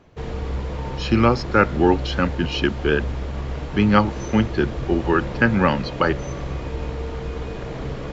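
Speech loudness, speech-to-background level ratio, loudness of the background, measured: -20.5 LUFS, 9.5 dB, -30.0 LUFS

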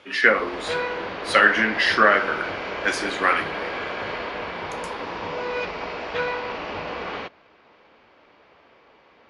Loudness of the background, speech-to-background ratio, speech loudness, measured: -29.5 LUFS, 9.5 dB, -20.0 LUFS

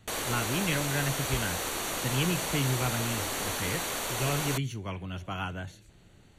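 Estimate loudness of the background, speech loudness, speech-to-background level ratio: -31.5 LUFS, -33.0 LUFS, -1.5 dB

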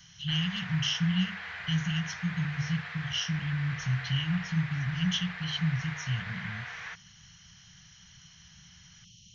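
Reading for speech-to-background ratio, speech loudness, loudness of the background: 8.0 dB, -31.5 LUFS, -39.5 LUFS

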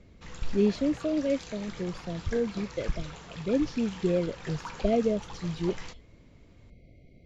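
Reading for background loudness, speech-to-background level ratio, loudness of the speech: -44.0 LUFS, 13.5 dB, -30.5 LUFS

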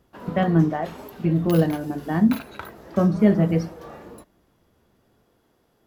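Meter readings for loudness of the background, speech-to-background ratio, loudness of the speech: -40.0 LUFS, 18.0 dB, -22.0 LUFS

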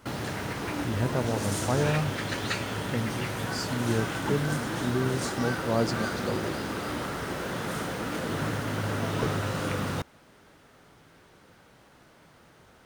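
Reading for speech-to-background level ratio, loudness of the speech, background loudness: 0.0 dB, -31.5 LUFS, -31.5 LUFS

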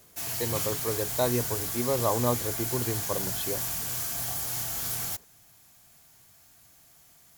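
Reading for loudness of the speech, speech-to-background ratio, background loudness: -31.5 LUFS, -2.0 dB, -29.5 LUFS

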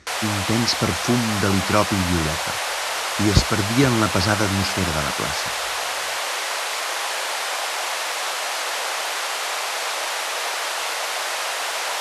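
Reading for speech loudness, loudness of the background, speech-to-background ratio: -22.5 LUFS, -23.5 LUFS, 1.0 dB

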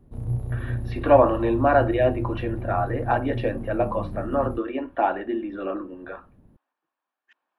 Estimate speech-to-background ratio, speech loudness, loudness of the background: 8.0 dB, -24.0 LUFS, -32.0 LUFS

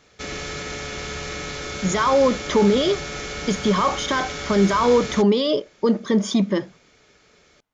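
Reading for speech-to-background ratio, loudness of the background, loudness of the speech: 9.5 dB, -30.0 LUFS, -20.5 LUFS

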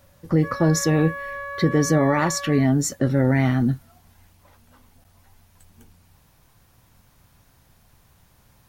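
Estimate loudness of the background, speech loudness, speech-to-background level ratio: -33.0 LUFS, -21.0 LUFS, 12.0 dB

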